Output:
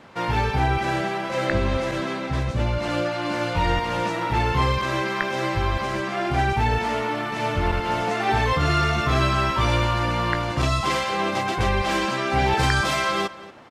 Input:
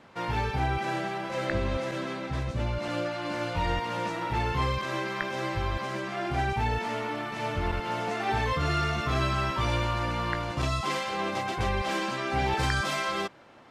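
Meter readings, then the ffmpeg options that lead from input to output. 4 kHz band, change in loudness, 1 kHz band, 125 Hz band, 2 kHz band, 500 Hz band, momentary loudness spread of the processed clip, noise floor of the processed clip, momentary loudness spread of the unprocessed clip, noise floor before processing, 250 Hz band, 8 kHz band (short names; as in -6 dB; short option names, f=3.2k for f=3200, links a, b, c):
+6.5 dB, +6.5 dB, +6.5 dB, +6.5 dB, +6.5 dB, +6.5 dB, 5 LU, -30 dBFS, 5 LU, -36 dBFS, +6.5 dB, +6.5 dB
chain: -filter_complex "[0:a]asplit=2[a][b];[b]adelay=233.2,volume=-17dB,highshelf=f=4k:g=-5.25[c];[a][c]amix=inputs=2:normalize=0,volume=6.5dB"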